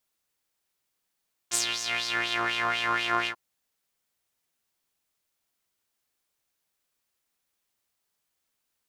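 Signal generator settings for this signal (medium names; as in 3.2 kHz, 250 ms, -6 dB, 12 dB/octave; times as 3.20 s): synth patch with filter wobble A#2, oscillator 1 saw, oscillator 2 saw, interval +19 st, oscillator 2 level -2.5 dB, noise -27 dB, filter bandpass, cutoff 970 Hz, Q 3.5, filter envelope 2.5 oct, filter decay 0.93 s, attack 37 ms, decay 0.11 s, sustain -11 dB, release 0.08 s, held 1.76 s, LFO 4.1 Hz, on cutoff 0.7 oct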